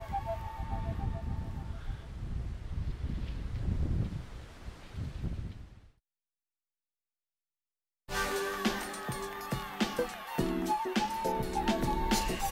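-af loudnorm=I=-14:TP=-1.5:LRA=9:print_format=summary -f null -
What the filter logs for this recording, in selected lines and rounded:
Input Integrated:    -34.6 LUFS
Input True Peak:     -15.8 dBTP
Input LRA:            11.2 LU
Input Threshold:     -44.9 LUFS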